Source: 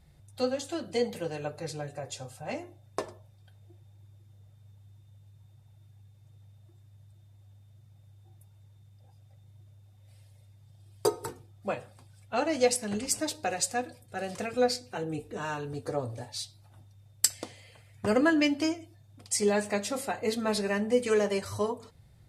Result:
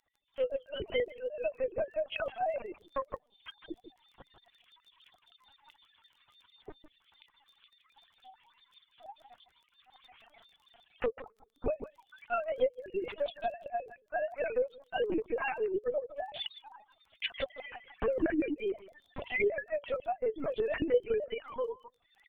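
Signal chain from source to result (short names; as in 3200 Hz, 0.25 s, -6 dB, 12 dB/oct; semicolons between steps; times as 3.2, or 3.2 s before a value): sine-wave speech; recorder AGC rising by 43 dB/s; echo 0.157 s -7 dB; reverb removal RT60 0.9 s; notches 60/120/180/240 Hz; reverb removal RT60 1.7 s; dynamic EQ 1300 Hz, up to -4 dB, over -38 dBFS, Q 0.87; LPC vocoder at 8 kHz pitch kept; crackle 17/s -46 dBFS; gain -7 dB; Vorbis 128 kbps 48000 Hz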